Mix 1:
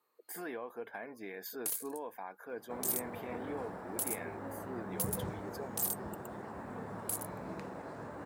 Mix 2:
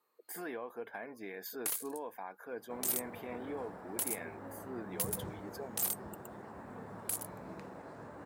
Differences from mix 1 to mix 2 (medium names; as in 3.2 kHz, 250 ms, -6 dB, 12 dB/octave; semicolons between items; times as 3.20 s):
first sound: add peaking EQ 1.6 kHz +10 dB 2 oct; second sound -4.0 dB